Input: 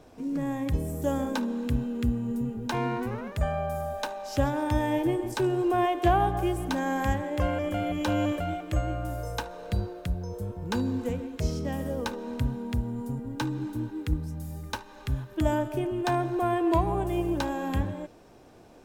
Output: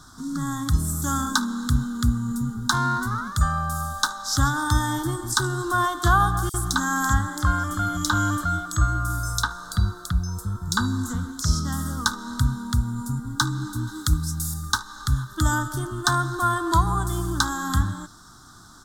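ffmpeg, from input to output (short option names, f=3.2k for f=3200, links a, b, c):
-filter_complex "[0:a]asettb=1/sr,asplit=3[a][b][c];[a]atrim=end=6.494[d];[b]atrim=start=6.49:end=11.6,asetpts=PTS-STARTPTS,afade=t=in:d=0.004:c=qsin,afade=t=out:st=5.106:d=0.004:c=qsin,acrossover=split=4100[e][f];[e]adelay=50[g];[g][f]amix=inputs=2:normalize=0,atrim=end_sample=225351[h];[c]atrim=start=11.596[i];[d][h]acrossfade=d=0.004:c1=hsin:c2=qsin[j];[j][i]acrossfade=d=0.004:c1=qsin:c2=hsin,asettb=1/sr,asplit=3[k][l][m];[k]atrim=end=13.874[n];[l]atrim=start=13.87:end=14.54,asetpts=PTS-STARTPTS,afade=t=in:d=0.004:c=qsin,afade=t=out:st=0.666:d=0.004:c=qsin,highshelf=f=2.4k:g=7.5[o];[m]atrim=start=14.536[p];[n][o]acrossfade=d=0.004:c1=hsin:c2=qsin[q];[q][p]acrossfade=d=0.004:c1=qsin:c2=hsin,firequalizer=gain_entry='entry(140,0);entry(310,-8);entry(510,-26);entry(740,-11);entry(1300,14);entry(2500,-29);entry(3500,7);entry(7600,12);entry(15000,3)':delay=0.05:min_phase=1,volume=7dB"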